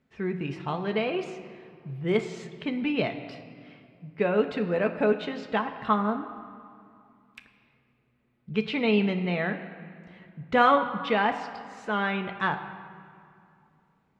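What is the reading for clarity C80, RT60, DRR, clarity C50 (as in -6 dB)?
11.0 dB, 2.4 s, 4.5 dB, 10.0 dB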